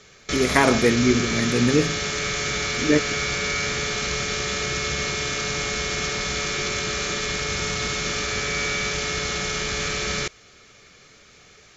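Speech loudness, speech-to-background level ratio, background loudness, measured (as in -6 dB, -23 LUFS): -21.5 LUFS, 3.0 dB, -24.5 LUFS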